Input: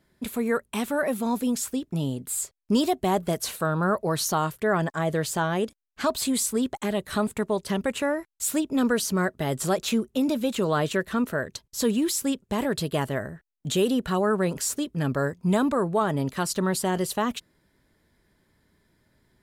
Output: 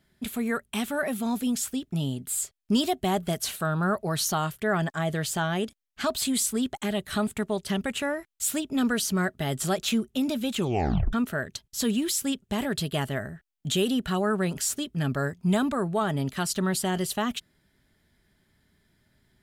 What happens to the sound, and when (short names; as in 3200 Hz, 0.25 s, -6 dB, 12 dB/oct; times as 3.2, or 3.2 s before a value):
10.58 tape stop 0.55 s
whole clip: thirty-one-band EQ 315 Hz -5 dB, 500 Hz -9 dB, 1000 Hz -7 dB, 3150 Hz +4 dB